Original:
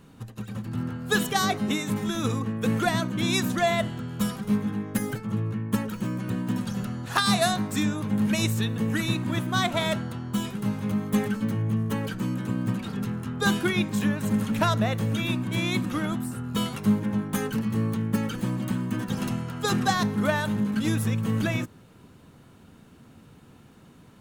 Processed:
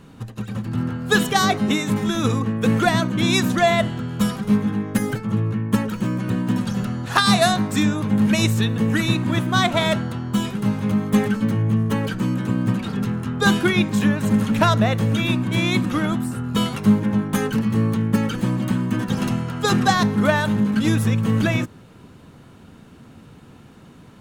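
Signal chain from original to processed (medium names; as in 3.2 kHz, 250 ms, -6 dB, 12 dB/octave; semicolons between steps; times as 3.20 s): treble shelf 9.7 kHz -7.5 dB; trim +6.5 dB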